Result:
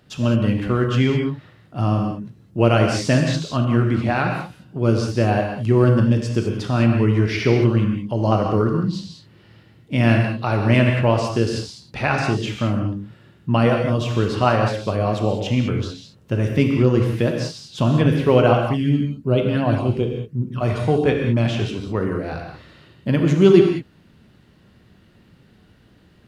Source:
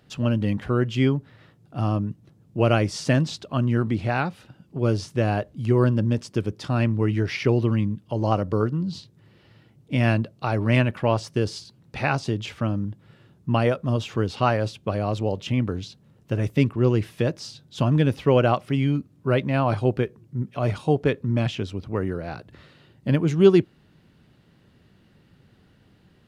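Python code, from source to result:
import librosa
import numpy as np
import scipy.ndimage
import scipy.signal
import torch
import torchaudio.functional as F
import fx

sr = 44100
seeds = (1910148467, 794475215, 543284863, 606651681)

y = fx.phaser_stages(x, sr, stages=12, low_hz=660.0, high_hz=1900.0, hz=2.8, feedback_pct=25, at=(18.53, 20.61))
y = fx.rev_gated(y, sr, seeds[0], gate_ms=230, shape='flat', drr_db=1.5)
y = F.gain(torch.from_numpy(y), 2.5).numpy()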